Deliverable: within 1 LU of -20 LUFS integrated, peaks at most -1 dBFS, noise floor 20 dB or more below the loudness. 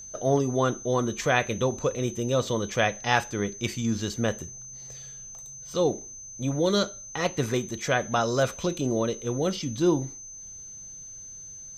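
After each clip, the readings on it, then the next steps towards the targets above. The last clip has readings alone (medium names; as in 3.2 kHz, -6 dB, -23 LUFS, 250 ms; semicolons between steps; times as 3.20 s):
tick rate 22 per s; steady tone 6.2 kHz; tone level -40 dBFS; loudness -27.0 LUFS; peak level -5.5 dBFS; loudness target -20.0 LUFS
-> de-click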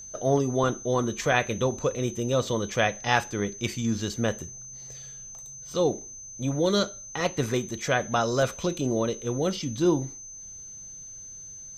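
tick rate 0 per s; steady tone 6.2 kHz; tone level -40 dBFS
-> band-stop 6.2 kHz, Q 30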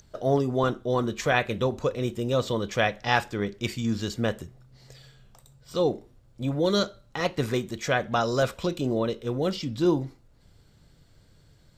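steady tone not found; loudness -27.0 LUFS; peak level -5.5 dBFS; loudness target -20.0 LUFS
-> trim +7 dB; peak limiter -1 dBFS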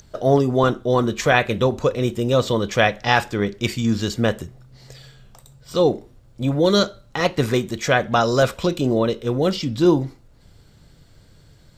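loudness -20.0 LUFS; peak level -1.0 dBFS; noise floor -51 dBFS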